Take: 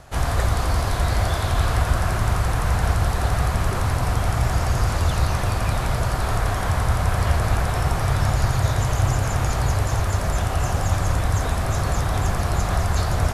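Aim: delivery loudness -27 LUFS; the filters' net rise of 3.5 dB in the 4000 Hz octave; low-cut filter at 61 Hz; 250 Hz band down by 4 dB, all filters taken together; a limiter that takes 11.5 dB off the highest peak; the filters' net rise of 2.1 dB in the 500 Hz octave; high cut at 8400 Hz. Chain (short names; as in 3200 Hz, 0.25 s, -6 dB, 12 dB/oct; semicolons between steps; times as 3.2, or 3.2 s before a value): HPF 61 Hz; LPF 8400 Hz; bell 250 Hz -8.5 dB; bell 500 Hz +4.5 dB; bell 4000 Hz +4.5 dB; gain +2 dB; limiter -18 dBFS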